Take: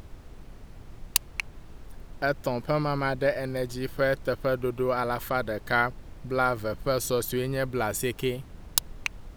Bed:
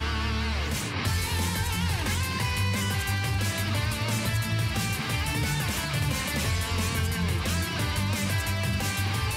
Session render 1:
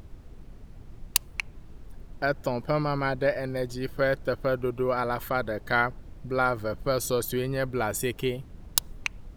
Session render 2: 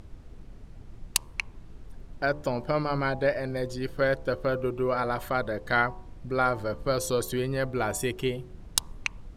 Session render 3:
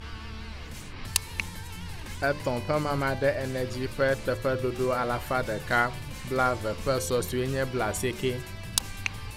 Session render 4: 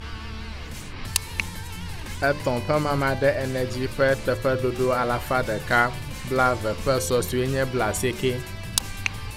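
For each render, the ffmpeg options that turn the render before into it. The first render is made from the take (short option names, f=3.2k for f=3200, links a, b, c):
-af "afftdn=nr=6:nf=-48"
-af "lowpass=11k,bandreject=f=73.86:t=h:w=4,bandreject=f=147.72:t=h:w=4,bandreject=f=221.58:t=h:w=4,bandreject=f=295.44:t=h:w=4,bandreject=f=369.3:t=h:w=4,bandreject=f=443.16:t=h:w=4,bandreject=f=517.02:t=h:w=4,bandreject=f=590.88:t=h:w=4,bandreject=f=664.74:t=h:w=4,bandreject=f=738.6:t=h:w=4,bandreject=f=812.46:t=h:w=4,bandreject=f=886.32:t=h:w=4,bandreject=f=960.18:t=h:w=4,bandreject=f=1.03404k:t=h:w=4,bandreject=f=1.1079k:t=h:w=4,bandreject=f=1.18176k:t=h:w=4"
-filter_complex "[1:a]volume=-12.5dB[a];[0:a][a]amix=inputs=2:normalize=0"
-af "volume=4.5dB,alimiter=limit=-3dB:level=0:latency=1"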